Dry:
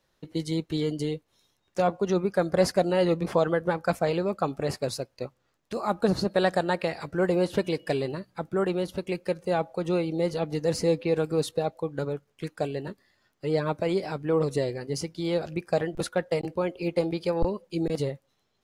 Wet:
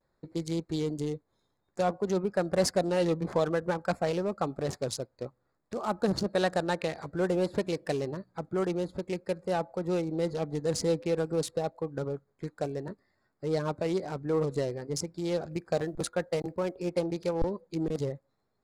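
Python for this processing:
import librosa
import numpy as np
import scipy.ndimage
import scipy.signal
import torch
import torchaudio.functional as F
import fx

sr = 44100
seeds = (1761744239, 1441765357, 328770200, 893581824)

p1 = fx.wiener(x, sr, points=15)
p2 = fx.peak_eq(p1, sr, hz=7700.0, db=9.0, octaves=1.7)
p3 = fx.quant_float(p2, sr, bits=6, at=(15.53, 16.76))
p4 = 10.0 ** (-26.5 / 20.0) * np.tanh(p3 / 10.0 ** (-26.5 / 20.0))
p5 = p3 + (p4 * 10.0 ** (-8.5 / 20.0))
p6 = fx.vibrato(p5, sr, rate_hz=0.55, depth_cents=44.0)
y = p6 * 10.0 ** (-5.0 / 20.0)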